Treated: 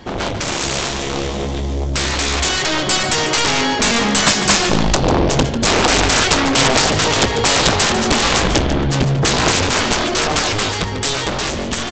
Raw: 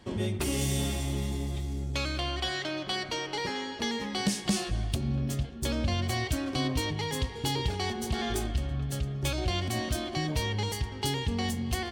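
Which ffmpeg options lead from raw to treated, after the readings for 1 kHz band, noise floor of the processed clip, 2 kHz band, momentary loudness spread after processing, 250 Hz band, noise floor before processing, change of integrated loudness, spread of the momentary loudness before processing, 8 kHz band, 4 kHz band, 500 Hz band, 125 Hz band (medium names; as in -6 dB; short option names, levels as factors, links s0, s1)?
+18.0 dB, -23 dBFS, +18.5 dB, 8 LU, +12.5 dB, -40 dBFS, +15.5 dB, 3 LU, +19.5 dB, +17.0 dB, +16.5 dB, +9.5 dB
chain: -filter_complex "[0:a]equalizer=f=810:t=o:w=2.9:g=3,aeval=exprs='0.224*(cos(1*acos(clip(val(0)/0.224,-1,1)))-cos(1*PI/2))+0.0501*(cos(7*acos(clip(val(0)/0.224,-1,1)))-cos(7*PI/2))':c=same,aresample=16000,aeval=exprs='0.224*sin(PI/2*5.62*val(0)/0.224)':c=same,aresample=44100,dynaudnorm=f=670:g=7:m=3.76,asplit=2[s0][s1];[s1]adelay=145.8,volume=0.355,highshelf=f=4000:g=-3.28[s2];[s0][s2]amix=inputs=2:normalize=0"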